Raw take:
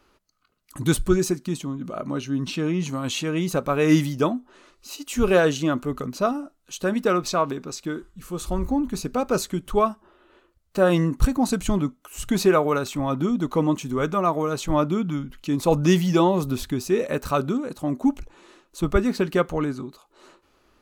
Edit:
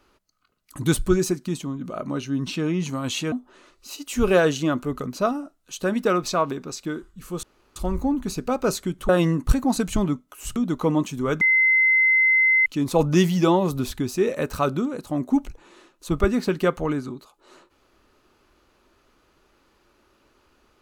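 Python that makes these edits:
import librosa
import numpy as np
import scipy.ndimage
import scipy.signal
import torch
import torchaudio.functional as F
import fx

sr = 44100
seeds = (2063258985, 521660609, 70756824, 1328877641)

y = fx.edit(x, sr, fx.cut(start_s=3.32, length_s=1.0),
    fx.insert_room_tone(at_s=8.43, length_s=0.33),
    fx.cut(start_s=9.76, length_s=1.06),
    fx.cut(start_s=12.29, length_s=0.99),
    fx.bleep(start_s=14.13, length_s=1.25, hz=2060.0, db=-14.5), tone=tone)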